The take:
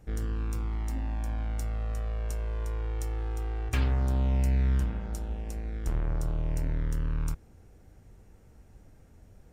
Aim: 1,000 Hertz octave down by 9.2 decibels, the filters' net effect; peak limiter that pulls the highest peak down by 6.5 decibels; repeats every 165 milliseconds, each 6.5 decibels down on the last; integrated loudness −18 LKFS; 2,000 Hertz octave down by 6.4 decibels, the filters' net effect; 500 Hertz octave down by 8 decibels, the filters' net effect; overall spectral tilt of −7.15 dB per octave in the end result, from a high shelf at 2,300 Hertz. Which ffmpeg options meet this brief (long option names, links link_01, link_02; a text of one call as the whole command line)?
ffmpeg -i in.wav -af "equalizer=frequency=500:width_type=o:gain=-8,equalizer=frequency=1000:width_type=o:gain=-8,equalizer=frequency=2000:width_type=o:gain=-3.5,highshelf=frequency=2300:gain=-3,alimiter=level_in=1.5dB:limit=-24dB:level=0:latency=1,volume=-1.5dB,aecho=1:1:165|330|495|660|825|990:0.473|0.222|0.105|0.0491|0.0231|0.0109,volume=14dB" out.wav